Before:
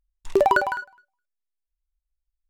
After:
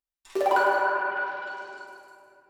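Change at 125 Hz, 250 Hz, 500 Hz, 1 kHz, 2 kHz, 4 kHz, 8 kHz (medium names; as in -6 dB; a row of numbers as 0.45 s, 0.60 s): under -10 dB, -5.0 dB, -2.5 dB, +0.5 dB, +1.0 dB, 0.0 dB, no reading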